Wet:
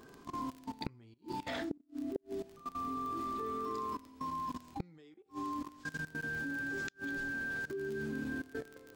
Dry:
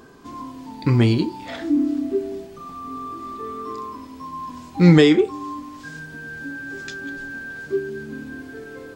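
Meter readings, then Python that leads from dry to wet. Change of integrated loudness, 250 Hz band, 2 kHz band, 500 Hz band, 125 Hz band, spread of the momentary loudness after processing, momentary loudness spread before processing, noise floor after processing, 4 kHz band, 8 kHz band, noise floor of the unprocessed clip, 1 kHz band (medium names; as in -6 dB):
-18.0 dB, -20.0 dB, -7.5 dB, -19.0 dB, -26.5 dB, 8 LU, 20 LU, -63 dBFS, -18.5 dB, no reading, -40 dBFS, -7.0 dB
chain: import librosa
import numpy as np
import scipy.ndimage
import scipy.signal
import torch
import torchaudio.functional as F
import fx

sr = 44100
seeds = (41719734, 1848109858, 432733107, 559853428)

y = fx.level_steps(x, sr, step_db=18)
y = fx.dmg_crackle(y, sr, seeds[0], per_s=31.0, level_db=-38.0)
y = fx.gate_flip(y, sr, shuts_db=-22.0, range_db=-37)
y = y * librosa.db_to_amplitude(-2.0)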